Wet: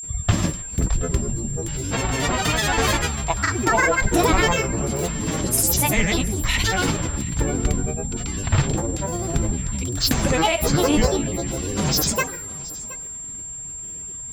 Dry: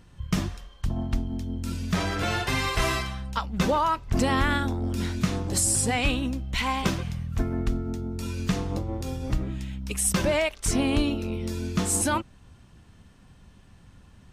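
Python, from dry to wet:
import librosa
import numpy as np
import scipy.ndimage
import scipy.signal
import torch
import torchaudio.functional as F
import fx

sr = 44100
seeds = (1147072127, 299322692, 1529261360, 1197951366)

p1 = fx.rev_double_slope(x, sr, seeds[0], early_s=0.87, late_s=3.0, knee_db=-18, drr_db=8.5)
p2 = fx.granulator(p1, sr, seeds[1], grain_ms=100.0, per_s=20.0, spray_ms=100.0, spread_st=12)
p3 = p2 + fx.echo_single(p2, sr, ms=722, db=-20.0, dry=0)
p4 = p3 + 10.0 ** (-37.0 / 20.0) * np.sin(2.0 * np.pi * 7400.0 * np.arange(len(p3)) / sr)
y = p4 * 10.0 ** (6.0 / 20.0)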